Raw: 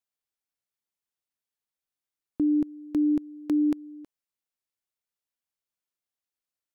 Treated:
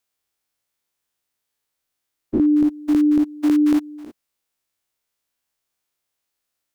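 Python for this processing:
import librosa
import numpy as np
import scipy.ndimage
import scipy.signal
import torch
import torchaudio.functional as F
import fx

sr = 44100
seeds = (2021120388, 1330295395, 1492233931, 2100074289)

y = fx.spec_dilate(x, sr, span_ms=120)
y = fx.peak_eq(y, sr, hz=190.0, db=-6.0, octaves=0.23)
y = y * librosa.db_to_amplitude(7.0)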